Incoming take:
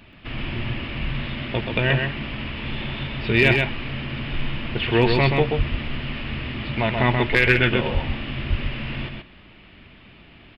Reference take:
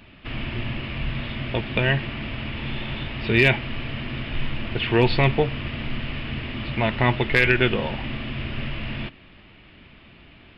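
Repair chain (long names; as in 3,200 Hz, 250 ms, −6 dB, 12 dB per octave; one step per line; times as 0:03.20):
high-pass at the plosives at 0:05.57/0:07.93/0:08.49
echo removal 130 ms −4.5 dB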